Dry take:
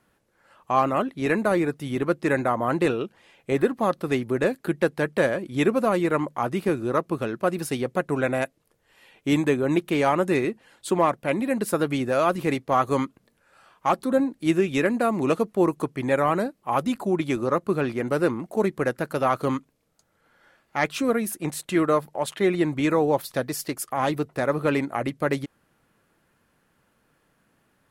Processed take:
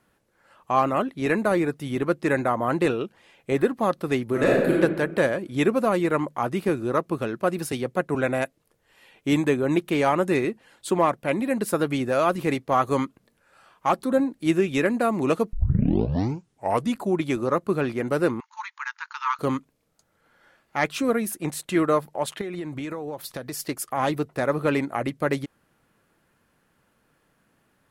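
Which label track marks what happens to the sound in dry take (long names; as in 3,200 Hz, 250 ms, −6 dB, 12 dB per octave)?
4.250000	4.730000	thrown reverb, RT60 1.3 s, DRR −4 dB
7.720000	8.150000	multiband upward and downward expander depth 40%
15.530000	15.530000	tape start 1.43 s
18.400000	19.390000	linear-phase brick-wall band-pass 850–7,000 Hz
22.410000	23.600000	downward compressor 12 to 1, threshold −28 dBFS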